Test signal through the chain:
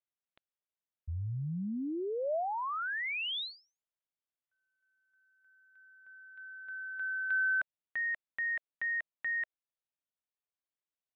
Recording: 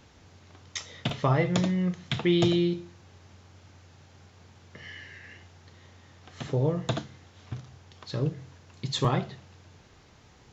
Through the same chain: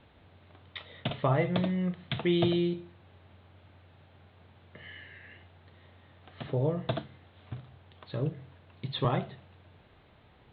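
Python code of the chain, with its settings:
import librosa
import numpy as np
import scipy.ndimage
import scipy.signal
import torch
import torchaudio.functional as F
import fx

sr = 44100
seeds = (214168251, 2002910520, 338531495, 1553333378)

y = scipy.signal.sosfilt(scipy.signal.butter(12, 3900.0, 'lowpass', fs=sr, output='sos'), x)
y = fx.peak_eq(y, sr, hz=630.0, db=4.5, octaves=0.42)
y = F.gain(torch.from_numpy(y), -3.5).numpy()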